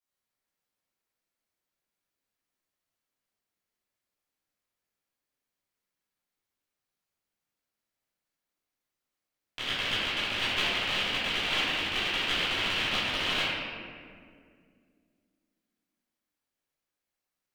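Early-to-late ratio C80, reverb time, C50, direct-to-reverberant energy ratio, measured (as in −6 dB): −0.5 dB, 2.2 s, −3.0 dB, −14.5 dB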